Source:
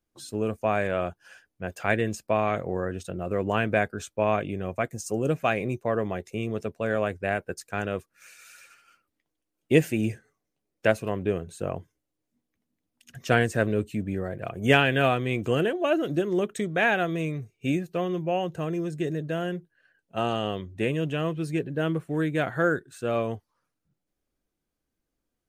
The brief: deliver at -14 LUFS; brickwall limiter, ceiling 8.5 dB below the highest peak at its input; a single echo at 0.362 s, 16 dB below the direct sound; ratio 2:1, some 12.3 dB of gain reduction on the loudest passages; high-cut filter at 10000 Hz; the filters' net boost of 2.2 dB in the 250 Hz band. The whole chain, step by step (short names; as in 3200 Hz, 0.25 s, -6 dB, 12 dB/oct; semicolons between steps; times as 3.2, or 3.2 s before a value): LPF 10000 Hz; bell 250 Hz +3 dB; compressor 2:1, threshold -36 dBFS; limiter -24.5 dBFS; echo 0.362 s -16 dB; gain +22.5 dB